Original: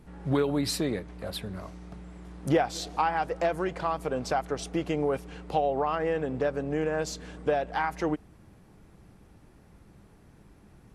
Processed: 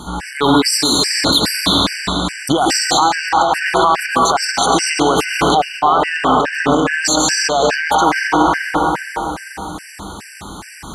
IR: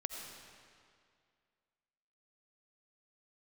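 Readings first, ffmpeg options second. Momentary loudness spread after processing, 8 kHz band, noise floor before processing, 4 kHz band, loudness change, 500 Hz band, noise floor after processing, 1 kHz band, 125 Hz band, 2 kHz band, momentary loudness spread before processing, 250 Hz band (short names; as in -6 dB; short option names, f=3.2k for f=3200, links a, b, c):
15 LU, +23.5 dB, -56 dBFS, +24.5 dB, +15.0 dB, +10.0 dB, -36 dBFS, +17.5 dB, +9.0 dB, +19.5 dB, 11 LU, +13.5 dB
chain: -filter_complex "[1:a]atrim=start_sample=2205,asetrate=28224,aresample=44100[a];[0:a][a]afir=irnorm=-1:irlink=0,aeval=exprs='0.299*(cos(1*acos(clip(val(0)/0.299,-1,1)))-cos(1*PI/2))+0.00596*(cos(6*acos(clip(val(0)/0.299,-1,1)))-cos(6*PI/2))':c=same,equalizer=f=125:t=o:w=1:g=-11,equalizer=f=500:t=o:w=1:g=-11,equalizer=f=1k:t=o:w=1:g=6,equalizer=f=4k:t=o:w=1:g=7,equalizer=f=8k:t=o:w=1:g=9,aeval=exprs='0.398*(cos(1*acos(clip(val(0)/0.398,-1,1)))-cos(1*PI/2))+0.0178*(cos(2*acos(clip(val(0)/0.398,-1,1)))-cos(2*PI/2))':c=same,lowshelf=f=100:g=-7.5,acompressor=threshold=-30dB:ratio=8,highpass=44,alimiter=level_in=29.5dB:limit=-1dB:release=50:level=0:latency=1,afftfilt=real='re*gt(sin(2*PI*2.4*pts/sr)*(1-2*mod(floor(b*sr/1024/1500),2)),0)':imag='im*gt(sin(2*PI*2.4*pts/sr)*(1-2*mod(floor(b*sr/1024/1500),2)),0)':win_size=1024:overlap=0.75,volume=-1.5dB"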